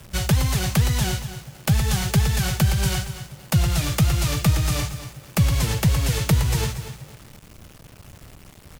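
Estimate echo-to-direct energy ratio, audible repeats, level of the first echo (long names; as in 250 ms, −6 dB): −12.0 dB, 2, −12.0 dB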